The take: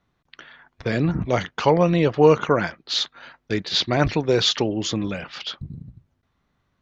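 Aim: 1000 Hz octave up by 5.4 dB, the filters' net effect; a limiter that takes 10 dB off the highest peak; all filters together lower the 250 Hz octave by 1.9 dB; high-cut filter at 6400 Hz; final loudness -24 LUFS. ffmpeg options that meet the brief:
-af "lowpass=6.4k,equalizer=f=250:t=o:g=-3.5,equalizer=f=1k:t=o:g=7,alimiter=limit=-11dB:level=0:latency=1"

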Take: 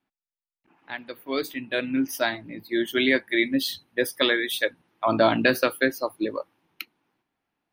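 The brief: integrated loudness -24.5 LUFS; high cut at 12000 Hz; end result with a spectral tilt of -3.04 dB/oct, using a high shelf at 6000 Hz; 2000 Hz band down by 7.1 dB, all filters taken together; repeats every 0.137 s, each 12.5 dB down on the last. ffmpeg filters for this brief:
-af "lowpass=12k,equalizer=f=2k:t=o:g=-8,highshelf=f=6k:g=-8,aecho=1:1:137|274|411:0.237|0.0569|0.0137,volume=2dB"

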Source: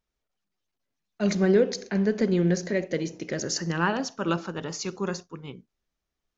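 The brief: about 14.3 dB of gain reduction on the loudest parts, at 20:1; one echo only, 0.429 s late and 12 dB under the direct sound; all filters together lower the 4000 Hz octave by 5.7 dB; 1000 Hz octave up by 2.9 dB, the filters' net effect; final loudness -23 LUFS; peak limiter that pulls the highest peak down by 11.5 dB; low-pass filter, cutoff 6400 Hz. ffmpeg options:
-af "lowpass=6.4k,equalizer=f=1k:t=o:g=4,equalizer=f=4k:t=o:g=-7,acompressor=threshold=-29dB:ratio=20,alimiter=level_in=6.5dB:limit=-24dB:level=0:latency=1,volume=-6.5dB,aecho=1:1:429:0.251,volume=17dB"

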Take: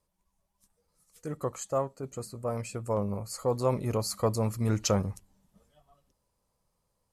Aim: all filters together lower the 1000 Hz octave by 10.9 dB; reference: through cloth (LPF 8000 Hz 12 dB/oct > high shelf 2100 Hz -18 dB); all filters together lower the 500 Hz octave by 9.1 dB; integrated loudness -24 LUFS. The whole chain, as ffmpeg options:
-af "lowpass=8k,equalizer=f=500:t=o:g=-7.5,equalizer=f=1k:t=o:g=-7,highshelf=f=2.1k:g=-18,volume=11.5dB"

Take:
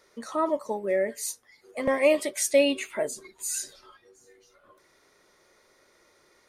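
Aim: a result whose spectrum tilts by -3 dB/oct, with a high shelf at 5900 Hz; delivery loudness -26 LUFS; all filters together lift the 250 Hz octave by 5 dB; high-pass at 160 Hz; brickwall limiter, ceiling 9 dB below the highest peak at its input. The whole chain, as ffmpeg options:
-af "highpass=160,equalizer=f=250:t=o:g=6.5,highshelf=f=5.9k:g=-6.5,volume=3dB,alimiter=limit=-13.5dB:level=0:latency=1"

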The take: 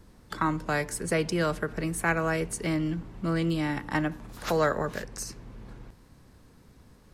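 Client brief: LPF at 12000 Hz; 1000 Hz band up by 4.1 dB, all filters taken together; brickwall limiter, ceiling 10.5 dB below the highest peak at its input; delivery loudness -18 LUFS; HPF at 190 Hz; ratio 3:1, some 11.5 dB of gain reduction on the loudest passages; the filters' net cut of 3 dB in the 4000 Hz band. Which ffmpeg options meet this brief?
-af "highpass=190,lowpass=12k,equalizer=f=1k:t=o:g=5.5,equalizer=f=4k:t=o:g=-4.5,acompressor=threshold=-34dB:ratio=3,volume=21dB,alimiter=limit=-7.5dB:level=0:latency=1"

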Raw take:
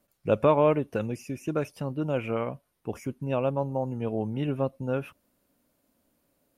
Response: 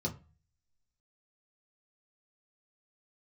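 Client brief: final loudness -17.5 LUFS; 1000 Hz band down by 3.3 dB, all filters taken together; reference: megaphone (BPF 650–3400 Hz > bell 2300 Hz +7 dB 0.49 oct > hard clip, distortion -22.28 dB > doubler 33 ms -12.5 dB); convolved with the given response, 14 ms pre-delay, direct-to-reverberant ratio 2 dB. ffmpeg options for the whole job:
-filter_complex "[0:a]equalizer=f=1k:t=o:g=-3,asplit=2[a][b];[1:a]atrim=start_sample=2205,adelay=14[c];[b][c]afir=irnorm=-1:irlink=0,volume=-4.5dB[d];[a][d]amix=inputs=2:normalize=0,highpass=650,lowpass=3.4k,equalizer=f=2.3k:t=o:w=0.49:g=7,asoftclip=type=hard:threshold=-16.5dB,asplit=2[e][f];[f]adelay=33,volume=-12.5dB[g];[e][g]amix=inputs=2:normalize=0,volume=13.5dB"

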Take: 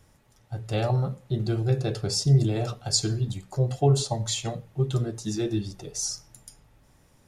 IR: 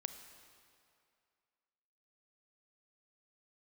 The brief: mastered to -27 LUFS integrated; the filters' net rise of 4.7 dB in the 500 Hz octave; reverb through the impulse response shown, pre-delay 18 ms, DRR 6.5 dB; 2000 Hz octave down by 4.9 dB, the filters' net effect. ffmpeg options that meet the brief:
-filter_complex "[0:a]equalizer=f=500:t=o:g=6.5,equalizer=f=2k:t=o:g=-7.5,asplit=2[a][b];[1:a]atrim=start_sample=2205,adelay=18[c];[b][c]afir=irnorm=-1:irlink=0,volume=-4.5dB[d];[a][d]amix=inputs=2:normalize=0,volume=-1.5dB"

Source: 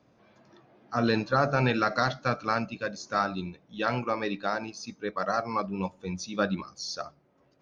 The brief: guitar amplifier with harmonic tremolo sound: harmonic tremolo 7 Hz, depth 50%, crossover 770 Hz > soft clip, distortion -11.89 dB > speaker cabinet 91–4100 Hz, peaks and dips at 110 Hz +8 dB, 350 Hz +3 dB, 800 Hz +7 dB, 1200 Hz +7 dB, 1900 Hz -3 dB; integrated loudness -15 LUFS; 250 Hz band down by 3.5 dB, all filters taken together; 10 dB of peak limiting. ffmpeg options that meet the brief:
-filter_complex "[0:a]equalizer=f=250:t=o:g=-6,alimiter=limit=-21dB:level=0:latency=1,acrossover=split=770[a][b];[a]aeval=exprs='val(0)*(1-0.5/2+0.5/2*cos(2*PI*7*n/s))':c=same[c];[b]aeval=exprs='val(0)*(1-0.5/2-0.5/2*cos(2*PI*7*n/s))':c=same[d];[c][d]amix=inputs=2:normalize=0,asoftclip=threshold=-31.5dB,highpass=91,equalizer=f=110:t=q:w=4:g=8,equalizer=f=350:t=q:w=4:g=3,equalizer=f=800:t=q:w=4:g=7,equalizer=f=1.2k:t=q:w=4:g=7,equalizer=f=1.9k:t=q:w=4:g=-3,lowpass=f=4.1k:w=0.5412,lowpass=f=4.1k:w=1.3066,volume=22.5dB"

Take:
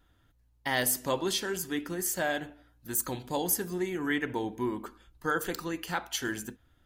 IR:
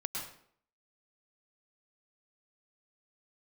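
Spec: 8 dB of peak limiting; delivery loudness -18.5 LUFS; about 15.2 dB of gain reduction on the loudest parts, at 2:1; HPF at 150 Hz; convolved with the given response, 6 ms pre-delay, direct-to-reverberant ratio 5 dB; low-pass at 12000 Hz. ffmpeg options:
-filter_complex "[0:a]highpass=150,lowpass=12k,acompressor=threshold=-54dB:ratio=2,alimiter=level_in=12.5dB:limit=-24dB:level=0:latency=1,volume=-12.5dB,asplit=2[a][b];[1:a]atrim=start_sample=2205,adelay=6[c];[b][c]afir=irnorm=-1:irlink=0,volume=-7dB[d];[a][d]amix=inputs=2:normalize=0,volume=28dB"

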